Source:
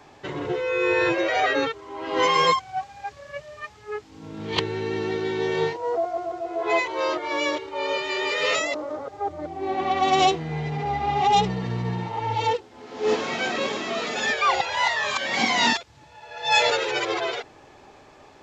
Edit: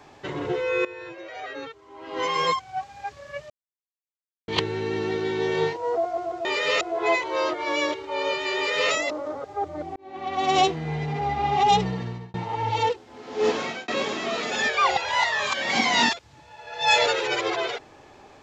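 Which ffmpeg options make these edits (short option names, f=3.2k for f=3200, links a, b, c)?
-filter_complex "[0:a]asplit=9[a][b][c][d][e][f][g][h][i];[a]atrim=end=0.85,asetpts=PTS-STARTPTS,afade=t=out:st=0.846:d=0.004:c=hsin:silence=0.125893[j];[b]atrim=start=0.85:end=3.5,asetpts=PTS-STARTPTS,afade=t=in:d=2.15:c=qua:silence=0.125893,afade=t=out:st=2.646:d=0.004:c=hsin[k];[c]atrim=start=3.5:end=4.48,asetpts=PTS-STARTPTS,volume=0[l];[d]atrim=start=4.48:end=6.452,asetpts=PTS-STARTPTS,afade=t=in:d=0.004:c=hsin[m];[e]atrim=start=8.198:end=8.562[n];[f]atrim=start=6.448:end=9.6,asetpts=PTS-STARTPTS,afade=t=out:st=3.148:d=0.004:c=hsin[o];[g]atrim=start=9.6:end=11.98,asetpts=PTS-STARTPTS,afade=t=in:d=0.71,afade=t=out:st=1.95:d=0.43[p];[h]atrim=start=11.98:end=13.52,asetpts=PTS-STARTPTS,afade=t=in:d=0.004:c=hsin,afade=t=out:st=1.28:d=0.26[q];[i]atrim=start=13.52,asetpts=PTS-STARTPTS,afade=t=in:d=0.004:c=hsin[r];[j][k][l][m]concat=n=4:v=0:a=1[s];[s][n]acrossfade=d=0.004:c1=hsin:c2=hsin[t];[o][p][q][r]concat=n=4:v=0:a=1[u];[t][u]acrossfade=d=0.004:c1=hsin:c2=hsin"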